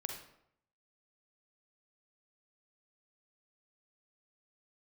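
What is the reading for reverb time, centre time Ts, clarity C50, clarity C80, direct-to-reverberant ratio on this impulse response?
0.75 s, 30 ms, 4.5 dB, 8.0 dB, 2.5 dB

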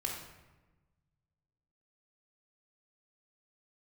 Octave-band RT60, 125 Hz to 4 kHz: 2.2 s, 1.6 s, 1.2 s, 1.1 s, 1.0 s, 0.75 s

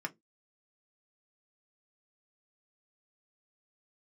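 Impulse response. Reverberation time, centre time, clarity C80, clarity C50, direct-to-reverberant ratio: 0.15 s, 4 ms, 36.5 dB, 26.5 dB, 2.5 dB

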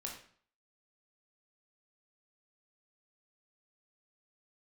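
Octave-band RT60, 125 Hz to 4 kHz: 0.55 s, 0.55 s, 0.50 s, 0.50 s, 0.50 s, 0.45 s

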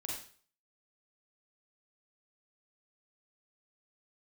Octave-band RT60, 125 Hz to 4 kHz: 0.50 s, 0.45 s, 0.45 s, 0.45 s, 0.45 s, 0.45 s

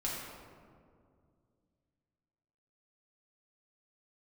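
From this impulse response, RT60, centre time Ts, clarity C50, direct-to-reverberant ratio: 2.2 s, 102 ms, -0.5 dB, -5.5 dB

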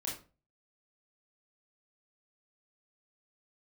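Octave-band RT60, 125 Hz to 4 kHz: 0.50 s, 0.40 s, 0.35 s, 0.35 s, 0.30 s, 0.25 s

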